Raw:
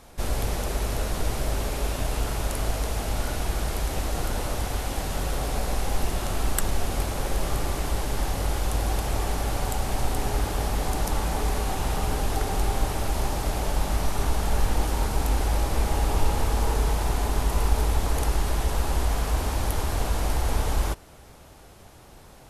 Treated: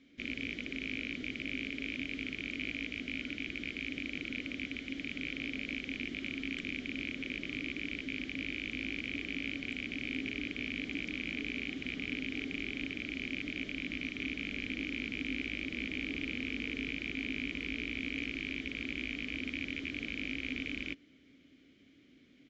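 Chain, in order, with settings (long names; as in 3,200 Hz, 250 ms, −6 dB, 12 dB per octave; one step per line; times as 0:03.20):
loose part that buzzes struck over −27 dBFS, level −15 dBFS
downsampling to 16,000 Hz
formant filter i
level +2.5 dB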